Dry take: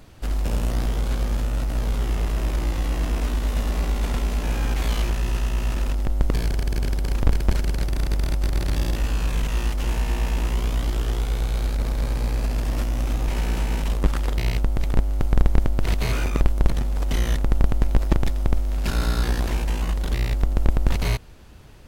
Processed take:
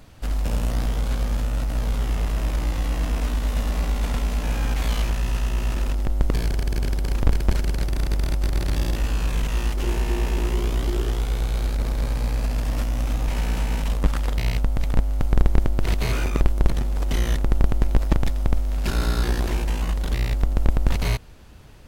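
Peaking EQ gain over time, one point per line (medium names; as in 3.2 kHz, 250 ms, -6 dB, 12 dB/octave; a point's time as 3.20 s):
peaking EQ 370 Hz 0.25 oct
-7 dB
from 5.47 s +0.5 dB
from 9.77 s +12.5 dB
from 11.09 s +0.5 dB
from 12.08 s -7.5 dB
from 15.29 s +2 dB
from 17.97 s -4 dB
from 18.87 s +5 dB
from 19.69 s -2 dB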